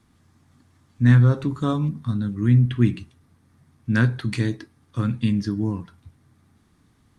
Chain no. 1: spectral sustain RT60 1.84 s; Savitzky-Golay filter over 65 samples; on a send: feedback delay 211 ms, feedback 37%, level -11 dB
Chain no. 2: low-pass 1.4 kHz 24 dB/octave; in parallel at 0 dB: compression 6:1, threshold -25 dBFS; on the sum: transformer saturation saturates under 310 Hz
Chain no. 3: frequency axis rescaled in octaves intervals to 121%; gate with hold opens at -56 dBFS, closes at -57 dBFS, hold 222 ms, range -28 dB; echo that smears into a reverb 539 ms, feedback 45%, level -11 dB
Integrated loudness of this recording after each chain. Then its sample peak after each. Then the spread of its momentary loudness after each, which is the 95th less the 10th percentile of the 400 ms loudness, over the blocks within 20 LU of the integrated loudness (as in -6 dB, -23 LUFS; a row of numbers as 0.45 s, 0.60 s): -19.5 LUFS, -21.5 LUFS, -23.0 LUFS; -4.5 dBFS, -5.5 dBFS, -5.5 dBFS; 15 LU, 13 LU, 18 LU